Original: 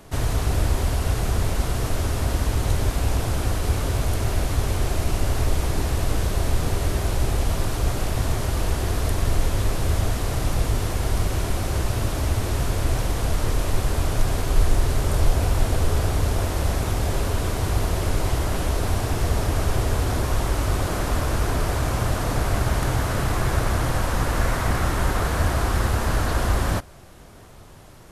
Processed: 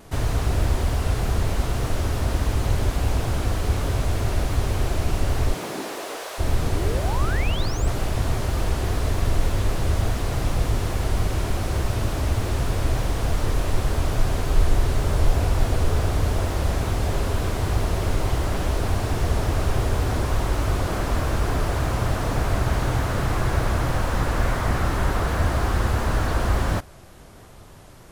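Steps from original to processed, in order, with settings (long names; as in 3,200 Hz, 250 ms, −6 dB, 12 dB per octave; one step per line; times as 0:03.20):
0:05.52–0:06.38: high-pass filter 140 Hz → 580 Hz 24 dB per octave
0:06.74–0:07.88: sound drawn into the spectrogram rise 270–8,600 Hz −32 dBFS
pitch vibrato 3.4 Hz 50 cents
slew-rate limiting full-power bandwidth 82 Hz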